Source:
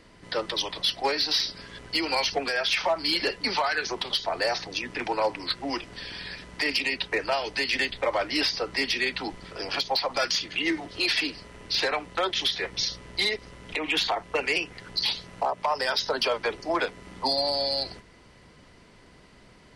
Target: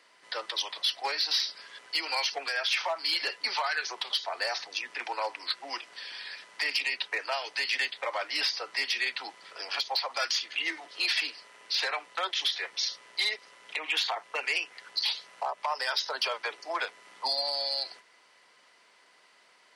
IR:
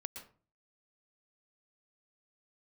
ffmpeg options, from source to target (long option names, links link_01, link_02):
-af "highpass=800,volume=-2.5dB"